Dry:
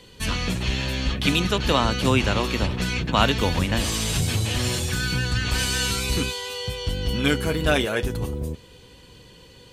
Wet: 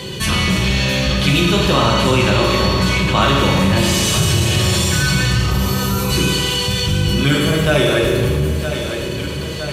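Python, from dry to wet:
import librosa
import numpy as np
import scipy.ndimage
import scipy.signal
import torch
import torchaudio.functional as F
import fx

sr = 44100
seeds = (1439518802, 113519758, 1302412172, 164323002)

p1 = fx.peak_eq(x, sr, hz=150.0, db=6.5, octaves=0.63)
p2 = p1 + fx.echo_feedback(p1, sr, ms=964, feedback_pct=54, wet_db=-17.0, dry=0)
p3 = fx.spec_box(p2, sr, start_s=5.39, length_s=0.71, low_hz=1400.0, high_hz=11000.0, gain_db=-13)
p4 = fx.rev_fdn(p3, sr, rt60_s=1.6, lf_ratio=0.75, hf_ratio=0.95, size_ms=16.0, drr_db=-3.0)
p5 = 10.0 ** (-12.0 / 20.0) * np.tanh(p4 / 10.0 ** (-12.0 / 20.0))
p6 = p4 + (p5 * 10.0 ** (-7.0 / 20.0))
p7 = scipy.signal.sosfilt(scipy.signal.butter(2, 61.0, 'highpass', fs=sr, output='sos'), p6)
p8 = fx.env_flatten(p7, sr, amount_pct=50)
y = p8 * 10.0 ** (-2.0 / 20.0)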